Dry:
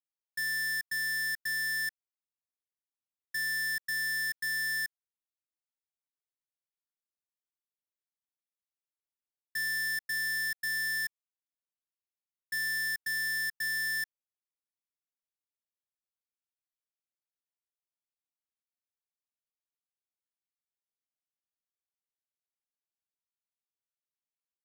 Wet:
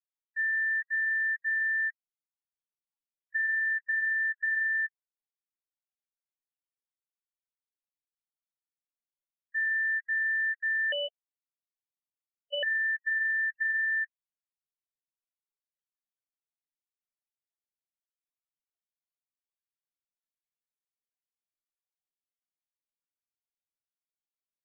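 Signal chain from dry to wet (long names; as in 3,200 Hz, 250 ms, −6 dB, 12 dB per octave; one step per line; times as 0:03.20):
spectral peaks only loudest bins 16
linear-prediction vocoder at 8 kHz pitch kept
0:10.92–0:12.63: ring modulation 1,200 Hz
level +4.5 dB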